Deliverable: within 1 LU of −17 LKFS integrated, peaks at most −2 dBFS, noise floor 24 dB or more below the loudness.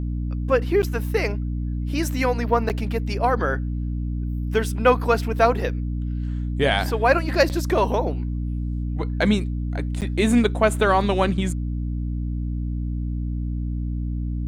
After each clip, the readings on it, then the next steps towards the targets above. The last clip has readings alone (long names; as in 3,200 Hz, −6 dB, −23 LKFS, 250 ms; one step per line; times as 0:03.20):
number of dropouts 4; longest dropout 8.7 ms; mains hum 60 Hz; hum harmonics up to 300 Hz; level of the hum −23 dBFS; integrated loudness −23.5 LKFS; sample peak −4.0 dBFS; target loudness −17.0 LKFS
→ repair the gap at 0:00.82/0:02.69/0:07.49/0:10.01, 8.7 ms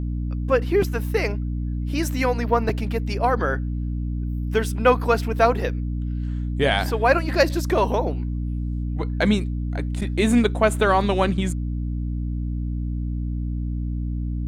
number of dropouts 0; mains hum 60 Hz; hum harmonics up to 300 Hz; level of the hum −23 dBFS
→ mains-hum notches 60/120/180/240/300 Hz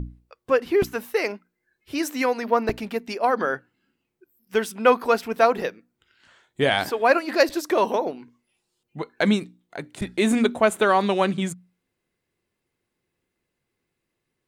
mains hum none found; integrated loudness −23.0 LKFS; sample peak −5.0 dBFS; target loudness −17.0 LKFS
→ level +6 dB
brickwall limiter −2 dBFS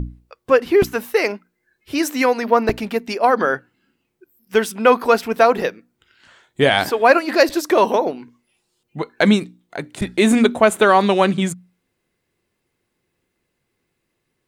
integrated loudness −17.5 LKFS; sample peak −2.0 dBFS; background noise floor −74 dBFS